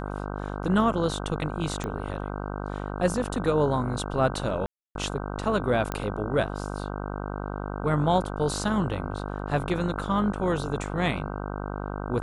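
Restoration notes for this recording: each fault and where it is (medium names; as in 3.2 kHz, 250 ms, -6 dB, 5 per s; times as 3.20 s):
buzz 50 Hz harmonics 31 -33 dBFS
1.84 s: pop -19 dBFS
4.66–4.95 s: dropout 292 ms
5.92 s: pop -14 dBFS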